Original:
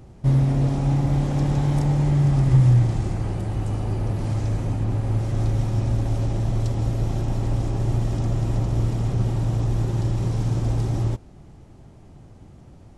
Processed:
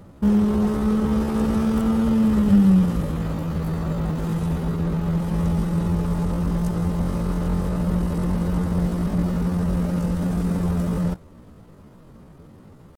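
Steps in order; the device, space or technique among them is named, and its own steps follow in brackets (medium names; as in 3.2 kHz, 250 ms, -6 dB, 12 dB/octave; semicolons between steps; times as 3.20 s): chipmunk voice (pitch shift +7.5 st)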